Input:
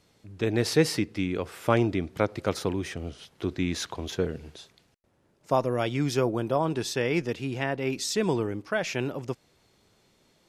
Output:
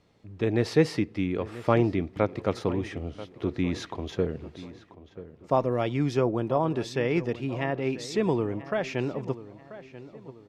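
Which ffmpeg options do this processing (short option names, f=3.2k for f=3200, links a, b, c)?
-filter_complex "[0:a]aemphasis=mode=reproduction:type=75fm,bandreject=f=1.5k:w=14,asplit=2[a][b];[b]adelay=986,lowpass=f=2.8k:p=1,volume=-15.5dB,asplit=2[c][d];[d]adelay=986,lowpass=f=2.8k:p=1,volume=0.4,asplit=2[e][f];[f]adelay=986,lowpass=f=2.8k:p=1,volume=0.4,asplit=2[g][h];[h]adelay=986,lowpass=f=2.8k:p=1,volume=0.4[i];[c][e][g][i]amix=inputs=4:normalize=0[j];[a][j]amix=inputs=2:normalize=0"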